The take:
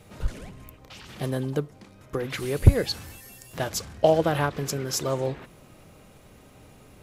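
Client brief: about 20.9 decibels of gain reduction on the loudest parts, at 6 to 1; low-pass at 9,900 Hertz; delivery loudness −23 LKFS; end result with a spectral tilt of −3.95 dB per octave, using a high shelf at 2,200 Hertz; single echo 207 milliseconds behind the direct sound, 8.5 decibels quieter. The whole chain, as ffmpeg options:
ffmpeg -i in.wav -af "lowpass=9900,highshelf=frequency=2200:gain=5,acompressor=threshold=-31dB:ratio=6,aecho=1:1:207:0.376,volume=13.5dB" out.wav

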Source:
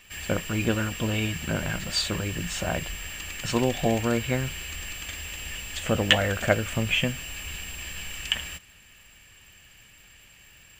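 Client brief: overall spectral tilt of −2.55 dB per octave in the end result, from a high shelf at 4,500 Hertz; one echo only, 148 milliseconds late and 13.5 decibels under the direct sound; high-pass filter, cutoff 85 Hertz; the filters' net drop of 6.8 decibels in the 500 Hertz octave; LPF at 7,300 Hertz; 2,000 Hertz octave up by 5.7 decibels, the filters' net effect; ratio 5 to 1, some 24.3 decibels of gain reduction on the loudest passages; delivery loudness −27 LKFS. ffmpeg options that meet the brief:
ffmpeg -i in.wav -af "highpass=85,lowpass=7300,equalizer=frequency=500:width_type=o:gain=-9,equalizer=frequency=2000:width_type=o:gain=7,highshelf=frequency=4500:gain=3.5,acompressor=threshold=-40dB:ratio=5,aecho=1:1:148:0.211,volume=13.5dB" out.wav

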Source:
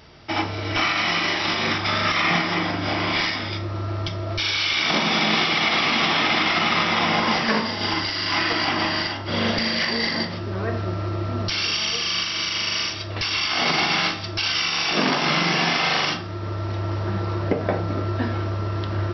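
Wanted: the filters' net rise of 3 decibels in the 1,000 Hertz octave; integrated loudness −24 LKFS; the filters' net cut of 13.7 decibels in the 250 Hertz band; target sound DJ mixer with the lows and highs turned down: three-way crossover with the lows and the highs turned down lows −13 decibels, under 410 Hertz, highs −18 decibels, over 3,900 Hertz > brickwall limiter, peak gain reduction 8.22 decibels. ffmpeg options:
ffmpeg -i in.wav -filter_complex "[0:a]acrossover=split=410 3900:gain=0.224 1 0.126[link_01][link_02][link_03];[link_01][link_02][link_03]amix=inputs=3:normalize=0,equalizer=frequency=250:width_type=o:gain=-7.5,equalizer=frequency=1000:width_type=o:gain=4.5,volume=2dB,alimiter=limit=-14.5dB:level=0:latency=1" out.wav

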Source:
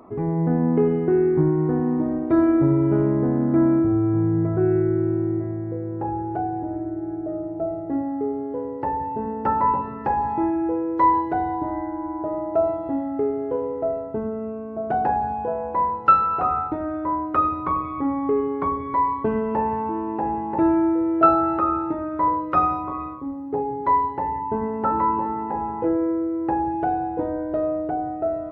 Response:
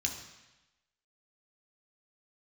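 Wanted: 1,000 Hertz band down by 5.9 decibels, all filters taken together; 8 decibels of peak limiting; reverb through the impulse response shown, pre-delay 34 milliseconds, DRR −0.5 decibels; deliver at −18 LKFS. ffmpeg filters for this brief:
-filter_complex "[0:a]equalizer=frequency=1000:width_type=o:gain=-7.5,alimiter=limit=-14.5dB:level=0:latency=1,asplit=2[link_01][link_02];[1:a]atrim=start_sample=2205,adelay=34[link_03];[link_02][link_03]afir=irnorm=-1:irlink=0,volume=-2.5dB[link_04];[link_01][link_04]amix=inputs=2:normalize=0,volume=5dB"

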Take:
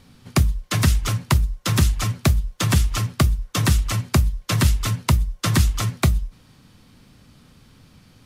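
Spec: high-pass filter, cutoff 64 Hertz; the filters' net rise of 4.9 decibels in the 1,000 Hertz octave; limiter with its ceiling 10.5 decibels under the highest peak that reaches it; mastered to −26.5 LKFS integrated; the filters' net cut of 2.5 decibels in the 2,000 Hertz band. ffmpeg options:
ffmpeg -i in.wav -af "highpass=64,equalizer=frequency=1000:width_type=o:gain=7.5,equalizer=frequency=2000:width_type=o:gain=-5.5,volume=-1dB,alimiter=limit=-15dB:level=0:latency=1" out.wav

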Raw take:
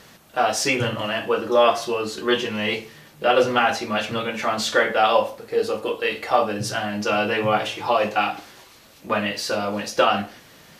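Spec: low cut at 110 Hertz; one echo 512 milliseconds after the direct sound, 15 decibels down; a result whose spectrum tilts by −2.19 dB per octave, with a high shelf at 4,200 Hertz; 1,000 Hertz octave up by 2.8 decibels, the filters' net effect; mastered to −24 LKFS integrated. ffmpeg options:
ffmpeg -i in.wav -af "highpass=110,equalizer=frequency=1000:width_type=o:gain=4.5,highshelf=frequency=4200:gain=-8.5,aecho=1:1:512:0.178,volume=-3dB" out.wav

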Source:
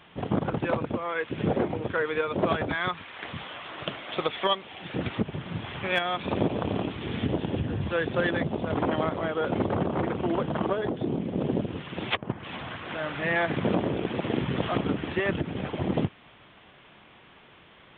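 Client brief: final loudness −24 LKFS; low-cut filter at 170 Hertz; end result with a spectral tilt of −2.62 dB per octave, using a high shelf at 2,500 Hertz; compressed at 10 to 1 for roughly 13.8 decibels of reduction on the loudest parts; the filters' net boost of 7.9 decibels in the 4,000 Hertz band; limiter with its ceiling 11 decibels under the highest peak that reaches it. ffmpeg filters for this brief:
ffmpeg -i in.wav -af "highpass=170,highshelf=frequency=2500:gain=5.5,equalizer=frequency=4000:width_type=o:gain=6,acompressor=threshold=-31dB:ratio=10,volume=13dB,alimiter=limit=-13dB:level=0:latency=1" out.wav

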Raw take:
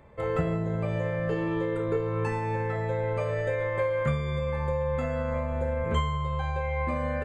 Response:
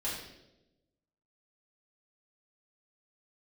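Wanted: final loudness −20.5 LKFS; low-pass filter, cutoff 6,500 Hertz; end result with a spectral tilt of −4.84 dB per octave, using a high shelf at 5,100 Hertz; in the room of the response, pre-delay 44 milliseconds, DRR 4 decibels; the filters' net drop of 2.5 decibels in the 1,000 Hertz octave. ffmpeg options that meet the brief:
-filter_complex "[0:a]lowpass=6500,equalizer=frequency=1000:width_type=o:gain=-3,highshelf=frequency=5100:gain=5,asplit=2[link_01][link_02];[1:a]atrim=start_sample=2205,adelay=44[link_03];[link_02][link_03]afir=irnorm=-1:irlink=0,volume=-8dB[link_04];[link_01][link_04]amix=inputs=2:normalize=0,volume=8.5dB"

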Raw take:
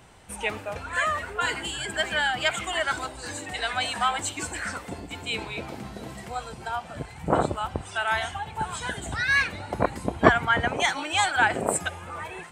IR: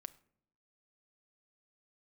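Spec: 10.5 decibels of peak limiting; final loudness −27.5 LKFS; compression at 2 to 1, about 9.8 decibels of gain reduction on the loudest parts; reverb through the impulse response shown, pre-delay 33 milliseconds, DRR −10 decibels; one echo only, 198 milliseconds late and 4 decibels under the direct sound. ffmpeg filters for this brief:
-filter_complex "[0:a]acompressor=threshold=-29dB:ratio=2,alimiter=limit=-21.5dB:level=0:latency=1,aecho=1:1:198:0.631,asplit=2[link_01][link_02];[1:a]atrim=start_sample=2205,adelay=33[link_03];[link_02][link_03]afir=irnorm=-1:irlink=0,volume=15.5dB[link_04];[link_01][link_04]amix=inputs=2:normalize=0,volume=-6.5dB"

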